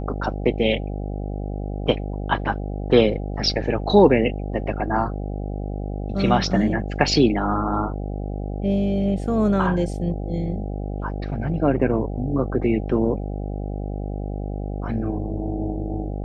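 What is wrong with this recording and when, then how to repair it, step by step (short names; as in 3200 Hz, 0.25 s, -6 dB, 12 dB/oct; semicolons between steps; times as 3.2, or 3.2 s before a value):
buzz 50 Hz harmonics 16 -28 dBFS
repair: de-hum 50 Hz, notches 16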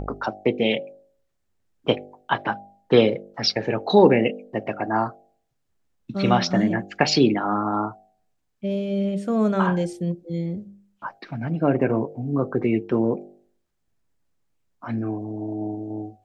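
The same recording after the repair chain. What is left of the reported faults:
none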